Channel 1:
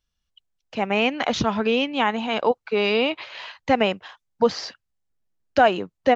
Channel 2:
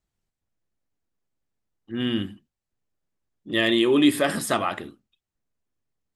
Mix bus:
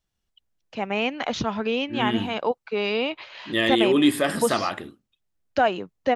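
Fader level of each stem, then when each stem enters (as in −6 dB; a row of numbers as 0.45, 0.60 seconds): −4.0, −0.5 decibels; 0.00, 0.00 seconds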